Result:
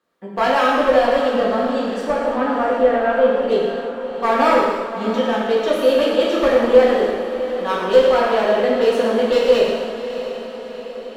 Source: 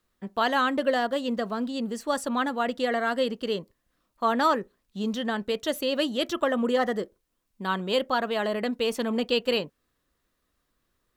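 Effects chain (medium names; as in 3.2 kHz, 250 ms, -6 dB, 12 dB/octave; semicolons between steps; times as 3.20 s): high-pass 460 Hz 12 dB/octave; tilt EQ -3.5 dB/octave; one-sided clip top -22 dBFS; 2.06–3.48 s: distance through air 440 m; echo that smears into a reverb 678 ms, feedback 56%, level -11.5 dB; gated-style reverb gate 390 ms falling, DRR -5 dB; modulated delay 111 ms, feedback 52%, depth 115 cents, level -12 dB; trim +4 dB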